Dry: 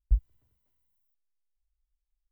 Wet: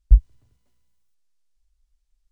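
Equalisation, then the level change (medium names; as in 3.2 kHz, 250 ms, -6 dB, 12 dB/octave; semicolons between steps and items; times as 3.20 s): distance through air 63 m; tone controls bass +5 dB, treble +10 dB; peaking EQ 75 Hz -6 dB 0.66 oct; +8.0 dB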